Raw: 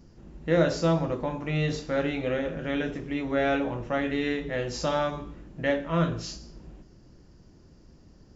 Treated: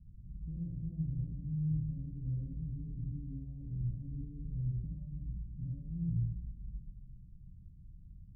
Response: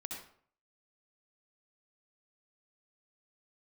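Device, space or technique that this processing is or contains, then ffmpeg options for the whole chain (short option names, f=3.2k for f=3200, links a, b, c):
club heard from the street: -filter_complex "[0:a]alimiter=limit=-21dB:level=0:latency=1,lowpass=f=140:w=0.5412,lowpass=f=140:w=1.3066[a];[1:a]atrim=start_sample=2205[b];[a][b]afir=irnorm=-1:irlink=0,volume=5dB"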